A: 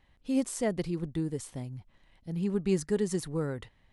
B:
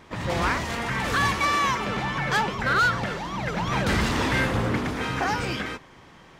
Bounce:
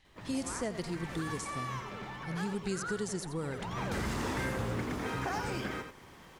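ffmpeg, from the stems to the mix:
ffmpeg -i stem1.wav -i stem2.wav -filter_complex "[0:a]equalizer=frequency=5800:width_type=o:width=2.4:gain=13,volume=-3dB,asplit=2[link_01][link_02];[link_02]volume=-13.5dB[link_03];[1:a]equalizer=frequency=400:width_type=o:width=0.24:gain=3.5,acrusher=bits=8:mix=0:aa=0.5,adelay=50,volume=-5dB,afade=type=in:start_time=3.52:duration=0.7:silence=0.281838,asplit=2[link_04][link_05];[link_05]volume=-8dB[link_06];[link_03][link_06]amix=inputs=2:normalize=0,aecho=0:1:86:1[link_07];[link_01][link_04][link_07]amix=inputs=3:normalize=0,acrossover=split=1900|6000[link_08][link_09][link_10];[link_08]acompressor=threshold=-32dB:ratio=4[link_11];[link_09]acompressor=threshold=-50dB:ratio=4[link_12];[link_10]acompressor=threshold=-45dB:ratio=4[link_13];[link_11][link_12][link_13]amix=inputs=3:normalize=0" out.wav

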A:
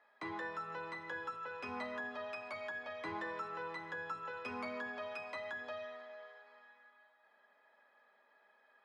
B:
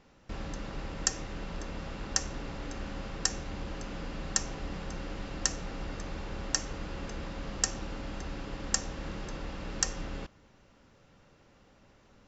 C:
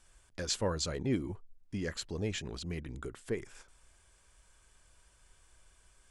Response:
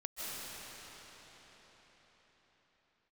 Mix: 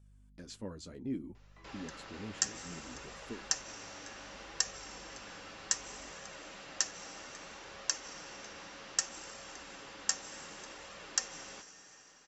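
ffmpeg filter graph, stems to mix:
-filter_complex "[0:a]adelay=1350,volume=-13.5dB[link_01];[1:a]highpass=frequency=1100:poles=1,adelay=1350,volume=1dB,asplit=2[link_02][link_03];[link_03]volume=-12.5dB[link_04];[2:a]equalizer=frequency=250:width=1.4:gain=13,aeval=exprs='val(0)+0.00631*(sin(2*PI*50*n/s)+sin(2*PI*2*50*n/s)/2+sin(2*PI*3*50*n/s)/3+sin(2*PI*4*50*n/s)/4+sin(2*PI*5*50*n/s)/5)':channel_layout=same,volume=-12dB[link_05];[3:a]atrim=start_sample=2205[link_06];[link_04][link_06]afir=irnorm=-1:irlink=0[link_07];[link_01][link_02][link_05][link_07]amix=inputs=4:normalize=0,flanger=delay=1.6:depth=9:regen=-42:speed=0.64:shape=sinusoidal"

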